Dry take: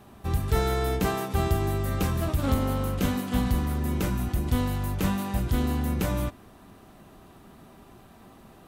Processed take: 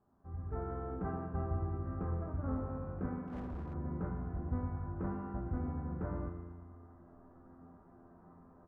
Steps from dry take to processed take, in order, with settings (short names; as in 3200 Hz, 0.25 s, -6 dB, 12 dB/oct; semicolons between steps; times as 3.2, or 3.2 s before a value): steep low-pass 1500 Hz 36 dB/oct; AGC gain up to 13.5 dB; resonator 86 Hz, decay 1.7 s, harmonics all, mix 90%; feedback echo 0.116 s, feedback 59%, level -12.5 dB; 3.27–3.74 hard clip -32 dBFS, distortion -16 dB; gain -7 dB